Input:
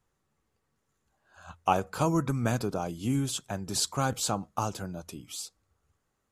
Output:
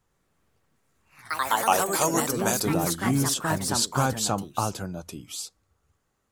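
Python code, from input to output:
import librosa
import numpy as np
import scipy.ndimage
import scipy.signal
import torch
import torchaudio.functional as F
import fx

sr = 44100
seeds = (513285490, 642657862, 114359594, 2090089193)

y = fx.bass_treble(x, sr, bass_db=-14, treble_db=13, at=(1.48, 2.65))
y = fx.echo_pitch(y, sr, ms=103, semitones=3, count=3, db_per_echo=-3.0)
y = F.gain(torch.from_numpy(y), 3.5).numpy()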